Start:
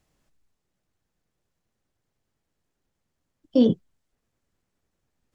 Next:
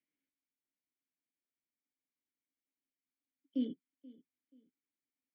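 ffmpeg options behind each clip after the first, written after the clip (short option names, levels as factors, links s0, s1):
-filter_complex "[0:a]asplit=3[s0][s1][s2];[s0]bandpass=f=270:t=q:w=8,volume=1[s3];[s1]bandpass=f=2290:t=q:w=8,volume=0.501[s4];[s2]bandpass=f=3010:t=q:w=8,volume=0.355[s5];[s3][s4][s5]amix=inputs=3:normalize=0,acrossover=split=500 2100:gain=0.2 1 0.251[s6][s7][s8];[s6][s7][s8]amix=inputs=3:normalize=0,asplit=2[s9][s10];[s10]adelay=481,lowpass=f=4300:p=1,volume=0.0891,asplit=2[s11][s12];[s12]adelay=481,lowpass=f=4300:p=1,volume=0.31[s13];[s9][s11][s13]amix=inputs=3:normalize=0,volume=1.12"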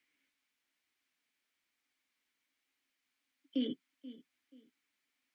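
-af "equalizer=f=2300:t=o:w=2.8:g=13.5,alimiter=level_in=1.78:limit=0.0631:level=0:latency=1:release=66,volume=0.562,flanger=delay=2.4:depth=2.3:regen=-61:speed=1.1:shape=sinusoidal,volume=2.51"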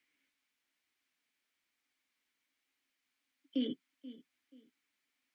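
-af anull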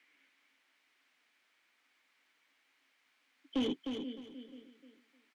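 -filter_complex "[0:a]asplit=2[s0][s1];[s1]highpass=f=720:p=1,volume=11.2,asoftclip=type=tanh:threshold=0.0631[s2];[s0][s2]amix=inputs=2:normalize=0,lowpass=f=1800:p=1,volume=0.501,aecho=1:1:306|612|918:0.473|0.114|0.0273"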